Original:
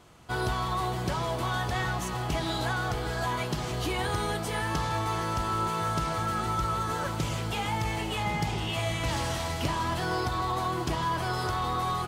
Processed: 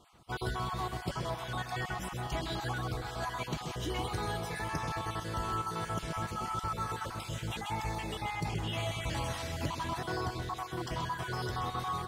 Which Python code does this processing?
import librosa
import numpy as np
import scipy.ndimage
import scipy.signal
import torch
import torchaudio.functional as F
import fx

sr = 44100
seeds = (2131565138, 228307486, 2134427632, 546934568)

y = fx.spec_dropout(x, sr, seeds[0], share_pct=34)
y = fx.echo_multitap(y, sr, ms=(129, 468), db=(-8.5, -16.0))
y = y * 10.0 ** (-5.0 / 20.0)